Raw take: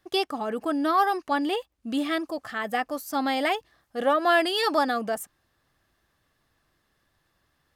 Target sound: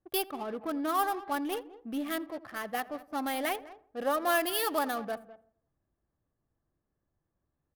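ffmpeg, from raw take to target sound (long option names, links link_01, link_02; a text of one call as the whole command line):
ffmpeg -i in.wav -filter_complex "[0:a]asplit=2[link_01][link_02];[link_02]aecho=0:1:204:0.15[link_03];[link_01][link_03]amix=inputs=2:normalize=0,adynamicsmooth=sensitivity=5.5:basefreq=710,aexciter=amount=9.5:drive=2.8:freq=10000,asplit=2[link_04][link_05];[link_05]adelay=84,lowpass=frequency=1600:poles=1,volume=-19dB,asplit=2[link_06][link_07];[link_07]adelay=84,lowpass=frequency=1600:poles=1,volume=0.54,asplit=2[link_08][link_09];[link_09]adelay=84,lowpass=frequency=1600:poles=1,volume=0.54,asplit=2[link_10][link_11];[link_11]adelay=84,lowpass=frequency=1600:poles=1,volume=0.54[link_12];[link_06][link_08][link_10][link_12]amix=inputs=4:normalize=0[link_13];[link_04][link_13]amix=inputs=2:normalize=0,volume=-7dB" out.wav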